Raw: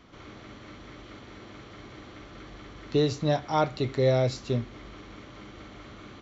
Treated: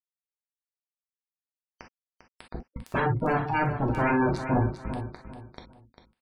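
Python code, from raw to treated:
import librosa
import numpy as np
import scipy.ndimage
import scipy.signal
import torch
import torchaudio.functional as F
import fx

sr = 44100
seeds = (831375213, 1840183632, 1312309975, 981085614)

y = fx.bin_expand(x, sr, power=1.5)
y = fx.env_lowpass_down(y, sr, base_hz=700.0, full_db=-21.0)
y = fx.low_shelf(y, sr, hz=260.0, db=12.0)
y = (np.mod(10.0 ** (18.0 / 20.0) * y + 1.0, 2.0) - 1.0) / 10.0 ** (18.0 / 20.0)
y = scipy.signal.sosfilt(scipy.signal.butter(2, 61.0, 'highpass', fs=sr, output='sos'), y)
y = fx.high_shelf(y, sr, hz=2700.0, db=-12.0)
y = fx.doubler(y, sr, ms=34.0, db=-13.5)
y = fx.quant_companded(y, sr, bits=2)
y = fx.spec_gate(y, sr, threshold_db=-15, keep='strong')
y = fx.echo_feedback(y, sr, ms=398, feedback_pct=30, wet_db=-10.0)
y = fx.rev_gated(y, sr, seeds[0], gate_ms=80, shape='flat', drr_db=2.0)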